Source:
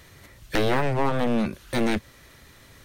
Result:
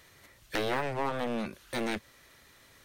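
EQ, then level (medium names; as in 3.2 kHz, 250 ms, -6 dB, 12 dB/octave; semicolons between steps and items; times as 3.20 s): bass shelf 260 Hz -9.5 dB; -5.5 dB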